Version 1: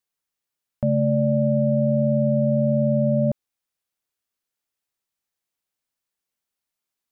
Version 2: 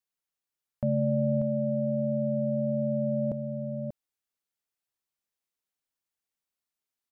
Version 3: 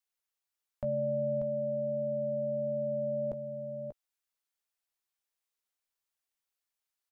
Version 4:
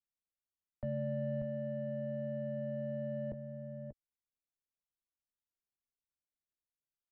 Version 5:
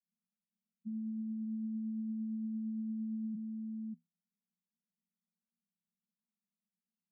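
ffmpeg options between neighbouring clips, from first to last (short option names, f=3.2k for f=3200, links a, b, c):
-af "aecho=1:1:588:0.398,volume=-6dB"
-filter_complex "[0:a]equalizer=f=170:t=o:w=1.8:g=-14,asplit=2[a][b];[b]adelay=15,volume=-11dB[c];[a][c]amix=inputs=2:normalize=0"
-filter_complex "[0:a]equalizer=f=720:w=0.65:g=-8.5,acrossover=split=220|240[a][b][c];[c]adynamicsmooth=sensitivity=5.5:basefreq=650[d];[a][b][d]amix=inputs=3:normalize=0,volume=1dB"
-af "alimiter=level_in=11.5dB:limit=-24dB:level=0:latency=1,volume=-11.5dB,acrusher=samples=18:mix=1:aa=0.000001,asuperpass=centerf=200:order=20:qfactor=2.8,volume=10.5dB"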